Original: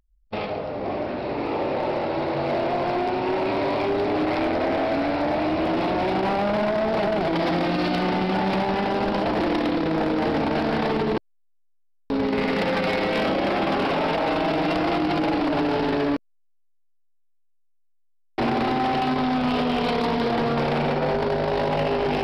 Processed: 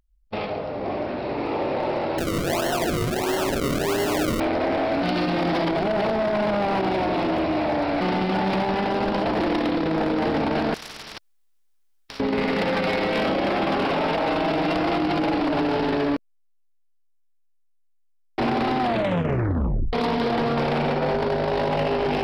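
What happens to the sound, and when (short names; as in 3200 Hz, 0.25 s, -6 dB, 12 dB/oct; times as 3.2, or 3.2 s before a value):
2.18–4.4 decimation with a swept rate 36× 1.5 Hz
5.03–8.01 reverse
10.74–12.2 spectral compressor 10:1
18.8 tape stop 1.13 s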